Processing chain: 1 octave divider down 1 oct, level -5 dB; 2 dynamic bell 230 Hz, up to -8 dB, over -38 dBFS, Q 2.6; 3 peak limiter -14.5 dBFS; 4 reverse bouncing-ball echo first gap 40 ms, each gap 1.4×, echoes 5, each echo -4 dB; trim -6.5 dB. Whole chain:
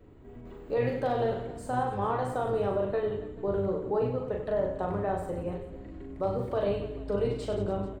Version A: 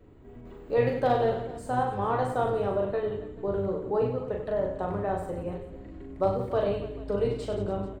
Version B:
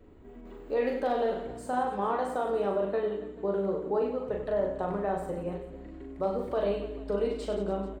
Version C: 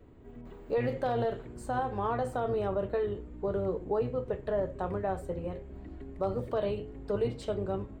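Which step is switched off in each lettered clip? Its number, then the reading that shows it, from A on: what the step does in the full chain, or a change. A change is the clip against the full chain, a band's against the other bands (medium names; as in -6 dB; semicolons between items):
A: 3, crest factor change +2.5 dB; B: 1, 125 Hz band -8.0 dB; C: 4, crest factor change -2.0 dB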